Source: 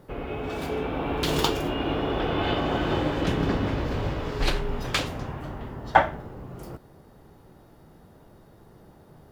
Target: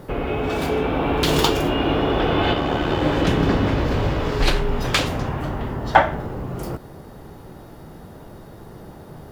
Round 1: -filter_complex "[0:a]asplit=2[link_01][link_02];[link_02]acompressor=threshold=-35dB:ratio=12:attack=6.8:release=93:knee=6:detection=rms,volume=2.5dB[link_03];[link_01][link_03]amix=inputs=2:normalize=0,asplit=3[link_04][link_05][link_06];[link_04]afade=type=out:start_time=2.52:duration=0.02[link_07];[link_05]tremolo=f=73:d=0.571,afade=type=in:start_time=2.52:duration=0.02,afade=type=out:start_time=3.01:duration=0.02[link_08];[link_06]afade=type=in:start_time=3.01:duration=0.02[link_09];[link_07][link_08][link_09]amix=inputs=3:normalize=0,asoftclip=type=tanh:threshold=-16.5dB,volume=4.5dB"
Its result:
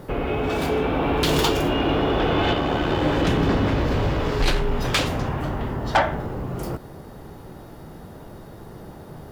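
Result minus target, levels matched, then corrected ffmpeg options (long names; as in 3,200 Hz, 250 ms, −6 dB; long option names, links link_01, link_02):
soft clipping: distortion +12 dB
-filter_complex "[0:a]asplit=2[link_01][link_02];[link_02]acompressor=threshold=-35dB:ratio=12:attack=6.8:release=93:knee=6:detection=rms,volume=2.5dB[link_03];[link_01][link_03]amix=inputs=2:normalize=0,asplit=3[link_04][link_05][link_06];[link_04]afade=type=out:start_time=2.52:duration=0.02[link_07];[link_05]tremolo=f=73:d=0.571,afade=type=in:start_time=2.52:duration=0.02,afade=type=out:start_time=3.01:duration=0.02[link_08];[link_06]afade=type=in:start_time=3.01:duration=0.02[link_09];[link_07][link_08][link_09]amix=inputs=3:normalize=0,asoftclip=type=tanh:threshold=-4.5dB,volume=4.5dB"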